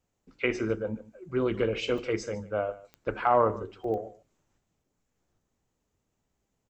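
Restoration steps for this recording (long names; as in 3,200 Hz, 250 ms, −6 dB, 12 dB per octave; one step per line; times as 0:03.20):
click removal
repair the gap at 0:01.98/0:03.84/0:04.84, 3.3 ms
echo removal 148 ms −18.5 dB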